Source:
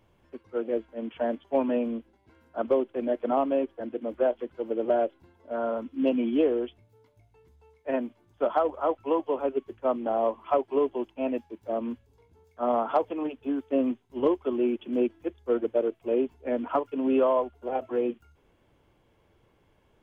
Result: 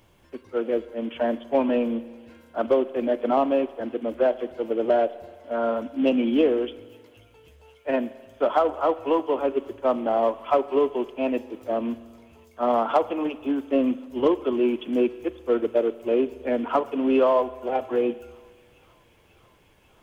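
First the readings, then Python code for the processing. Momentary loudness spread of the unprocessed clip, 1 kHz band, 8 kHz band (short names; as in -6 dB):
10 LU, +4.0 dB, n/a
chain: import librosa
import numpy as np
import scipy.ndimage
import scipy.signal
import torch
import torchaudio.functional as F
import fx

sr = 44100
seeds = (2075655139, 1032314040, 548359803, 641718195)

p1 = fx.high_shelf(x, sr, hz=3000.0, db=10.0)
p2 = 10.0 ** (-30.0 / 20.0) * np.tanh(p1 / 10.0 ** (-30.0 / 20.0))
p3 = p1 + (p2 * librosa.db_to_amplitude(-11.0))
p4 = fx.echo_wet_highpass(p3, sr, ms=539, feedback_pct=79, hz=2200.0, wet_db=-21.5)
p5 = fx.rev_spring(p4, sr, rt60_s=1.6, pass_ms=(43,), chirp_ms=50, drr_db=16.5)
y = p5 * librosa.db_to_amplitude(2.5)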